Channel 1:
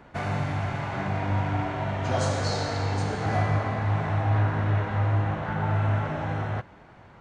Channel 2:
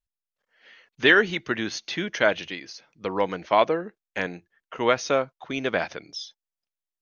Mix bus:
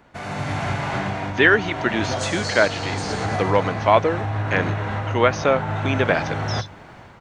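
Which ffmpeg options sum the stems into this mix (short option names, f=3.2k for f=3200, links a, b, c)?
-filter_complex "[0:a]bandreject=f=50:t=h:w=6,bandreject=f=100:t=h:w=6,bandreject=f=150:t=h:w=6,alimiter=limit=-22.5dB:level=0:latency=1:release=329,volume=-3dB[a];[1:a]acrossover=split=2600[b][c];[c]acompressor=threshold=-44dB:ratio=4:attack=1:release=60[d];[b][d]amix=inputs=2:normalize=0,adelay=350,volume=-4dB[e];[a][e]amix=inputs=2:normalize=0,highshelf=f=3.5k:g=7.5,dynaudnorm=f=100:g=7:m=11dB"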